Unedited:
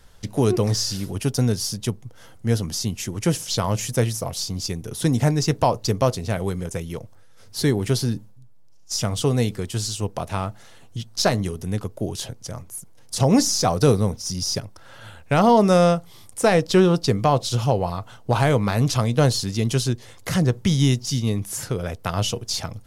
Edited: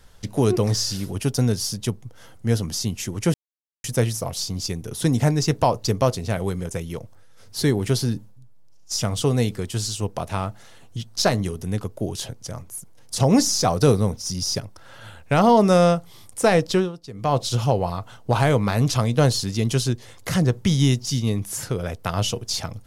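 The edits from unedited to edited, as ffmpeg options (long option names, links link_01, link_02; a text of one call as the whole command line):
ffmpeg -i in.wav -filter_complex "[0:a]asplit=5[link_01][link_02][link_03][link_04][link_05];[link_01]atrim=end=3.34,asetpts=PTS-STARTPTS,afade=type=out:start_time=3.336:duration=0.004:curve=hsin[link_06];[link_02]atrim=start=3.34:end=3.84,asetpts=PTS-STARTPTS,volume=0[link_07];[link_03]atrim=start=3.84:end=16.92,asetpts=PTS-STARTPTS,afade=type=in:duration=0.004:curve=hsin,afade=type=out:start_time=12.83:duration=0.25:silence=0.125893[link_08];[link_04]atrim=start=16.92:end=17.13,asetpts=PTS-STARTPTS,volume=-18dB[link_09];[link_05]atrim=start=17.13,asetpts=PTS-STARTPTS,afade=type=in:duration=0.25:silence=0.125893[link_10];[link_06][link_07][link_08][link_09][link_10]concat=n=5:v=0:a=1" out.wav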